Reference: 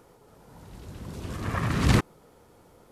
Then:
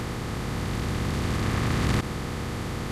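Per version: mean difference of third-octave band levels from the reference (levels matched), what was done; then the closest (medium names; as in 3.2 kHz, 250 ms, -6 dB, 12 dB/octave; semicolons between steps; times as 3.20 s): 14.5 dB: spectral levelling over time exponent 0.2; trim -7 dB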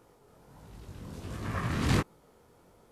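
1.0 dB: chorus 1.4 Hz, delay 17.5 ms, depth 7.7 ms; trim -1.5 dB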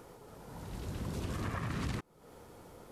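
9.5 dB: compression 12:1, threshold -36 dBFS, peak gain reduction 21 dB; trim +2.5 dB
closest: second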